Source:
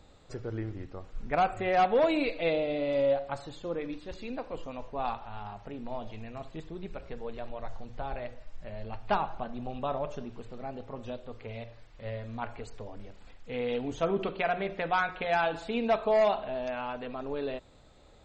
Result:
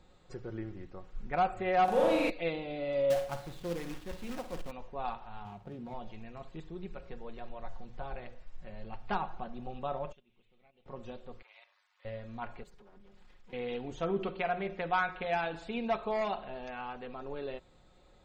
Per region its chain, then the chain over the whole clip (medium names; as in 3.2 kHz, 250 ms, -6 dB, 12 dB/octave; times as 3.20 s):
1.84–2.30 s: one-bit delta coder 64 kbps, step -43 dBFS + upward compressor, threshold -35 dBFS + flutter echo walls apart 7 m, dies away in 1.3 s
3.10–4.71 s: tone controls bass +5 dB, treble -8 dB + companded quantiser 4-bit + flutter echo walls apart 9 m, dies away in 0.29 s
5.45–5.94 s: median filter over 25 samples + high-pass 79 Hz + bass shelf 190 Hz +9 dB
10.12–10.86 s: gate -35 dBFS, range -23 dB + high-order bell 2.8 kHz +14.5 dB 1.1 oct + compression 4:1, threshold -56 dBFS
11.42–12.05 s: Chebyshev high-pass 1 kHz, order 3 + AM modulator 99 Hz, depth 45%
12.63–13.53 s: comb filter that takes the minimum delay 4.9 ms + compression 10:1, threshold -49 dBFS
whole clip: treble shelf 6.1 kHz -5 dB; band-stop 610 Hz, Q 12; comb 5.5 ms, depth 40%; trim -4.5 dB